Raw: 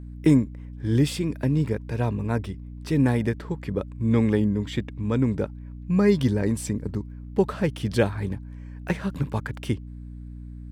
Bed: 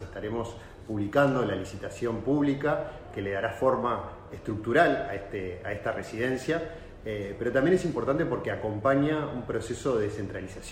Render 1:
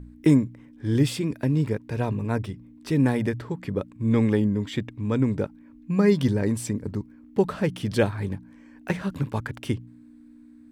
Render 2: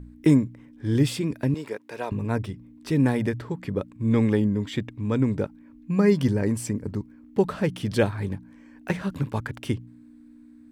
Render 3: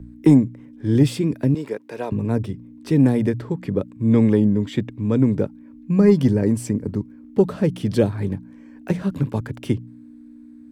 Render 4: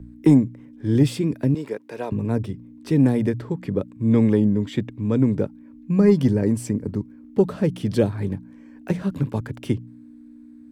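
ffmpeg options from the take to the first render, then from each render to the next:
-af "bandreject=f=60:t=h:w=4,bandreject=f=120:t=h:w=4,bandreject=f=180:t=h:w=4"
-filter_complex "[0:a]asettb=1/sr,asplit=3[a][b][c];[a]atrim=end=1.544[d];[b]atrim=start=1.54:end=2.12,asetpts=PTS-STARTPTS,afade=t=in:d=0.004:c=qsin,afade=t=out:st=0.576:d=0.004:c=qsin,highpass=450[e];[c]atrim=start=2.116[f];[d][e]acrossfade=d=0.004:c1=hsin:c2=qsin[g];[g][f]acrossfade=d=0.004:c1=qsin:c2=hsin,asettb=1/sr,asplit=3[h][i][j];[h]atrim=end=6.004[k];[i]atrim=start=6:end=6.9,asetpts=PTS-STARTPTS,afade=t=in:d=0.004:c=qsin,afade=t=out:st=0.896:d=0.004:c=qsin,equalizer=f=3.7k:t=o:w=0.24:g=-8[l];[j]atrim=start=6.896[m];[k][l]acrossfade=d=0.004:c1=hsin:c2=qsin[n];[n][m]acrossfade=d=0.004:c1=qsin:c2=hsin"
-filter_complex "[0:a]acrossover=split=100|610|3300[a][b][c][d];[b]acontrast=64[e];[c]alimiter=level_in=2dB:limit=-24dB:level=0:latency=1:release=216,volume=-2dB[f];[a][e][f][d]amix=inputs=4:normalize=0"
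-af "volume=-1.5dB"

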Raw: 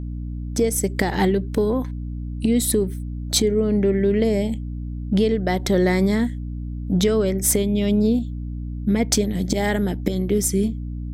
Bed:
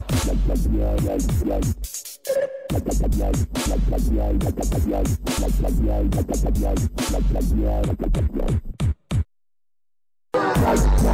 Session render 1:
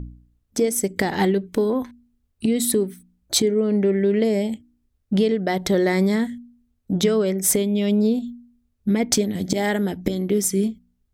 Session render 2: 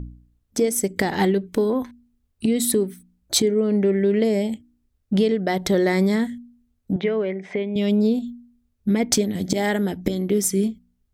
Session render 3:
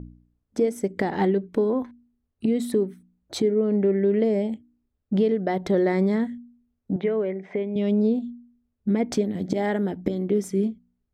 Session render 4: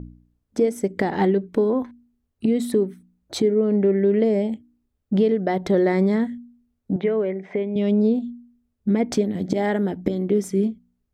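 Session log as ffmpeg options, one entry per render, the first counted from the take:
-af "bandreject=f=60:t=h:w=4,bandreject=f=120:t=h:w=4,bandreject=f=180:t=h:w=4,bandreject=f=240:t=h:w=4,bandreject=f=300:t=h:w=4"
-filter_complex "[0:a]asettb=1/sr,asplit=3[a][b][c];[a]atrim=end=6.964[d];[b]atrim=start=6.96:end=7.76,asetpts=PTS-STARTPTS,afade=t=in:d=0.004:c=qsin,afade=t=out:st=0.796:d=0.004:c=qsin,highpass=250,equalizer=f=290:t=q:w=4:g=-8,equalizer=f=510:t=q:w=4:g=-4,equalizer=f=1.3k:t=q:w=4:g=-8,equalizer=f=2.1k:t=q:w=4:g=5,lowpass=f=2.6k:w=0.5412,lowpass=f=2.6k:w=1.3066[e];[c]atrim=start=7.756[f];[d][e]acrossfade=d=0.004:c1=hsin:c2=qsin[g];[g][f]acrossfade=d=0.004:c1=qsin:c2=hsin"
-af "lowpass=f=1k:p=1,lowshelf=f=110:g=-10.5"
-af "volume=2.5dB"

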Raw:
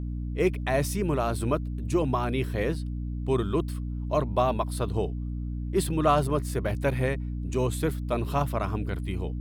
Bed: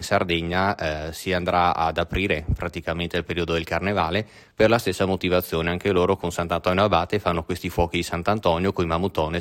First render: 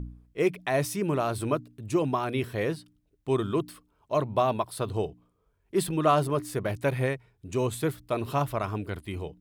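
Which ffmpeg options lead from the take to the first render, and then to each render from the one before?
-af "bandreject=f=60:t=h:w=4,bandreject=f=120:t=h:w=4,bandreject=f=180:t=h:w=4,bandreject=f=240:t=h:w=4,bandreject=f=300:t=h:w=4"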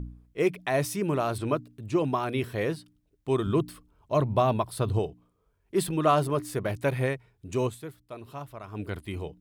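-filter_complex "[0:a]asettb=1/sr,asplit=3[a][b][c];[a]atrim=end=1.384[d];[b]atrim=start=1.38:end=2.1,asetpts=PTS-STARTPTS,afade=t=in:d=0.004:c=qsin,afade=t=out:st=0.716:d=0.004:c=qsin,acrossover=split=5700[e][f];[f]acompressor=threshold=-57dB:ratio=4:attack=1:release=60[g];[e][g]amix=inputs=2:normalize=0[h];[c]atrim=start=2.096[i];[d][h]acrossfade=d=0.004:c1=hsin:c2=qsin[j];[j][i]acrossfade=d=0.004:c1=qsin:c2=hsin,asettb=1/sr,asplit=3[k][l][m];[k]atrim=end=3.464[n];[l]atrim=start=3.46:end=4.99,asetpts=PTS-STARTPTS,afade=t=in:d=0.004:c=qsin,afade=t=out:st=1.526:d=0.004:c=qsin,lowshelf=f=170:g=10[o];[m]atrim=start=4.986[p];[n][o]acrossfade=d=0.004:c1=hsin:c2=qsin[q];[q][p]acrossfade=d=0.004:c1=qsin:c2=hsin,asplit=3[r][s][t];[r]atrim=end=8.14,asetpts=PTS-STARTPTS,afade=t=out:st=7.67:d=0.47:c=exp:silence=0.237137[u];[s]atrim=start=8.14:end=8.33,asetpts=PTS-STARTPTS,volume=-12.5dB[v];[t]atrim=start=8.33,asetpts=PTS-STARTPTS,afade=t=in:d=0.47:c=exp:silence=0.237137[w];[u][v][w]concat=n=3:v=0:a=1"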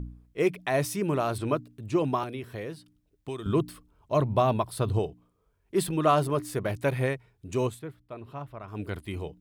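-filter_complex "[0:a]asettb=1/sr,asplit=3[a][b][c];[a]atrim=end=2.234[d];[b]atrim=start=2.23:end=3.46,asetpts=PTS-STARTPTS,afade=t=in:d=0.004:c=qsin,afade=t=out:st=1.226:d=0.004:c=qsin,acrossover=split=620|1900[e][f][g];[e]acompressor=threshold=-36dB:ratio=4[h];[f]acompressor=threshold=-48dB:ratio=4[i];[g]acompressor=threshold=-48dB:ratio=4[j];[h][i][j]amix=inputs=3:normalize=0[k];[c]atrim=start=3.456[l];[d][k]acrossfade=d=0.004:c1=hsin:c2=qsin[m];[m][l]acrossfade=d=0.004:c1=qsin:c2=hsin,asettb=1/sr,asplit=3[n][o][p];[n]atrim=end=7.794[q];[o]atrim=start=7.79:end=8.68,asetpts=PTS-STARTPTS,afade=t=in:d=0.004:c=qsin,afade=t=out:st=0.886:d=0.004:c=qsin,bass=f=250:g=2,treble=f=4k:g=-13[r];[p]atrim=start=8.676[s];[q][r]acrossfade=d=0.004:c1=hsin:c2=qsin[t];[t][s]acrossfade=d=0.004:c1=qsin:c2=hsin"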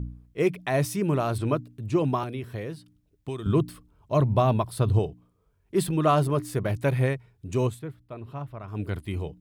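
-af "equalizer=f=110:w=0.64:g=6"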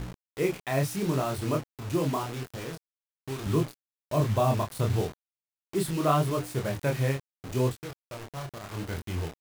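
-af "acrusher=bits=5:mix=0:aa=0.000001,flanger=delay=22.5:depth=7.4:speed=0.77"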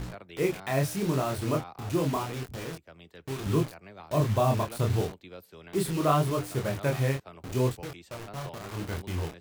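-filter_complex "[1:a]volume=-25dB[a];[0:a][a]amix=inputs=2:normalize=0"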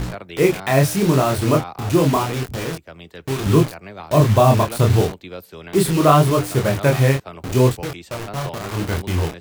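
-af "volume=11.5dB,alimiter=limit=-2dB:level=0:latency=1"

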